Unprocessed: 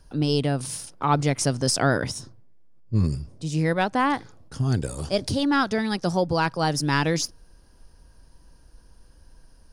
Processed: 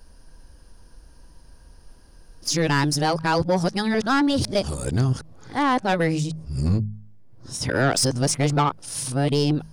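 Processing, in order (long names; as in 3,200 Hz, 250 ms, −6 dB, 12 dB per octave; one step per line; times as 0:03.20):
played backwards from end to start
hum removal 52.67 Hz, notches 4
soft clipping −17 dBFS, distortion −15 dB
level +4 dB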